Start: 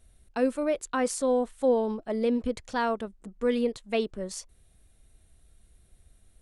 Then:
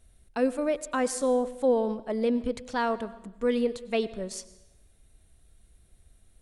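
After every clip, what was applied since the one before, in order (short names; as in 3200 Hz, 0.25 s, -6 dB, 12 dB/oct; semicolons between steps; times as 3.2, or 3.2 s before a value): plate-style reverb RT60 1 s, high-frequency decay 0.85×, pre-delay 85 ms, DRR 16.5 dB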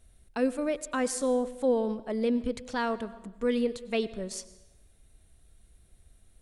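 dynamic EQ 770 Hz, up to -4 dB, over -38 dBFS, Q 0.95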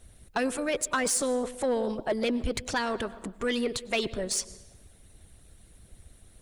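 harmonic-percussive split harmonic -14 dB; in parallel at -1.5 dB: limiter -31 dBFS, peak gain reduction 9.5 dB; on the sum: soft clip -27.5 dBFS, distortion -17 dB; gain +8 dB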